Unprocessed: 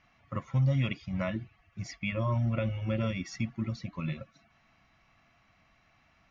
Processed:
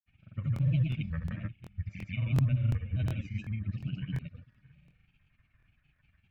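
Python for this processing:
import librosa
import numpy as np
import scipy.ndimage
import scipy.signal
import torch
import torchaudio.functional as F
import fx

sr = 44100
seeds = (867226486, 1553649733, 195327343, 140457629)

p1 = fx.curve_eq(x, sr, hz=(100.0, 270.0, 1000.0, 2000.0, 5400.0), db=(0, -12, -22, 0, -22))
p2 = p1 + 10.0 ** (-3.0 / 20.0) * np.pad(p1, (int(119 * sr / 1000.0), 0))[:len(p1)]
p3 = fx.granulator(p2, sr, seeds[0], grain_ms=100.0, per_s=16.0, spray_ms=18.0, spread_st=3)
p4 = fx.low_shelf(p3, sr, hz=390.0, db=4.0)
p5 = fx.notch(p4, sr, hz=2000.0, q=5.4)
p6 = p5 + fx.echo_single(p5, sr, ms=609, db=-23.5, dry=0)
p7 = fx.granulator(p6, sr, seeds[1], grain_ms=100.0, per_s=20.0, spray_ms=100.0, spread_st=0)
p8 = fx.buffer_crackle(p7, sr, first_s=0.54, period_s=0.36, block=1024, kind='repeat')
y = p8 * 10.0 ** (1.5 / 20.0)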